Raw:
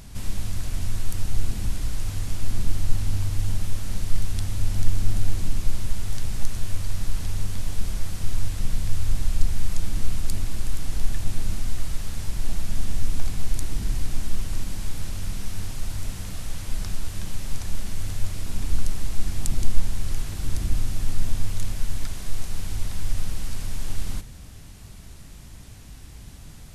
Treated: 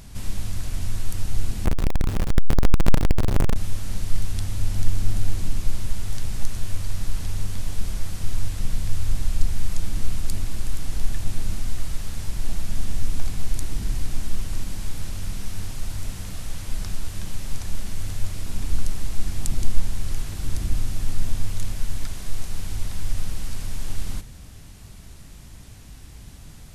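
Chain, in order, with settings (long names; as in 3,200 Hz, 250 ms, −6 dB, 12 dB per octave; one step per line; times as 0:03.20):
0:01.65–0:03.56: each half-wave held at its own peak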